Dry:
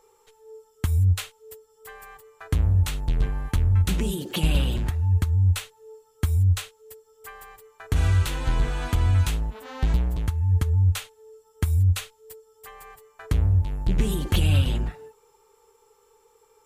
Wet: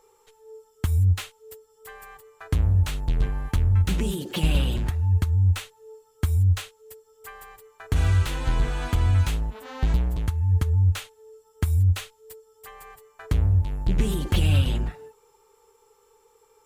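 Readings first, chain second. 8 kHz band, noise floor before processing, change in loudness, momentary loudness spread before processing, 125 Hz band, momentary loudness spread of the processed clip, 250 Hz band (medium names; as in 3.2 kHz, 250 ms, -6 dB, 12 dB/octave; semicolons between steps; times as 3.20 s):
-2.5 dB, -61 dBFS, 0.0 dB, 10 LU, 0.0 dB, 10 LU, 0.0 dB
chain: slew-rate limiter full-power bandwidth 140 Hz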